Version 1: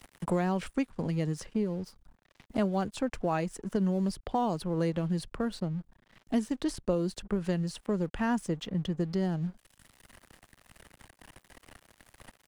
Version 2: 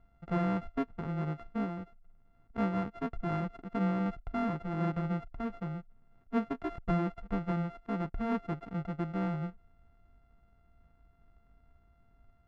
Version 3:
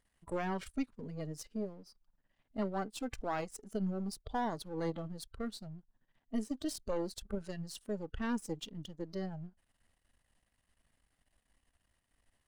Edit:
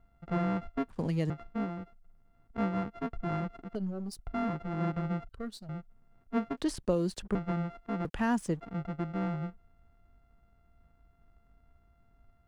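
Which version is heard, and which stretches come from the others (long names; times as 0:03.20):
2
0:00.89–0:01.30: punch in from 1
0:03.75–0:04.19: punch in from 3
0:05.29–0:05.69: punch in from 3
0:06.57–0:07.35: punch in from 1
0:08.05–0:08.60: punch in from 1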